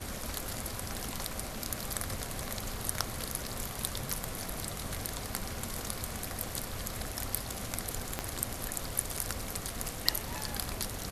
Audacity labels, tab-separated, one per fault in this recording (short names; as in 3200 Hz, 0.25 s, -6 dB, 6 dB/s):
8.190000	8.190000	pop -15 dBFS